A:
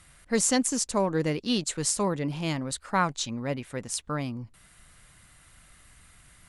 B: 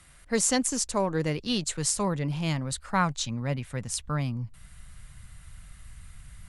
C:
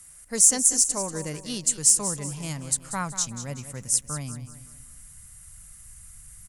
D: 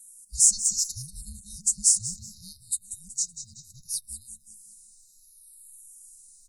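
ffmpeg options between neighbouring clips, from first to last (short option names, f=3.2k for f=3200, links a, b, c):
-filter_complex "[0:a]asubboost=boost=10:cutoff=110,acrossover=split=130[a][b];[a]acompressor=threshold=-42dB:ratio=6[c];[c][b]amix=inputs=2:normalize=0"
-filter_complex "[0:a]aexciter=amount=6.1:drive=5.8:freq=5.5k,asplit=2[a][b];[b]aecho=0:1:188|376|564|752:0.251|0.108|0.0464|0.02[c];[a][c]amix=inputs=2:normalize=0,volume=-5.5dB"
-filter_complex "[0:a]afftfilt=real='real(if(between(b,1,1008),(2*floor((b-1)/24)+1)*24-b,b),0)':imag='imag(if(between(b,1,1008),(2*floor((b-1)/24)+1)*24-b,b),0)*if(between(b,1,1008),-1,1)':win_size=2048:overlap=0.75,afftfilt=real='re*(1-between(b*sr/4096,220,3700))':imag='im*(1-between(b*sr/4096,220,3700))':win_size=4096:overlap=0.75,asplit=2[a][b];[b]afreqshift=-0.69[c];[a][c]amix=inputs=2:normalize=1"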